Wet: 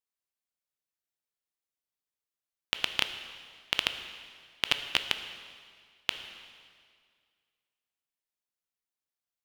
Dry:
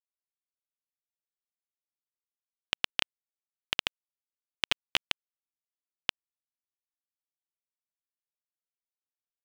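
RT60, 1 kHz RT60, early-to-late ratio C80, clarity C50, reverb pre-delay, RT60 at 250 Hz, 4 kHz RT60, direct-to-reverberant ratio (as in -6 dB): 2.0 s, 2.0 s, 10.5 dB, 9.0 dB, 8 ms, 2.1 s, 1.9 s, 8.0 dB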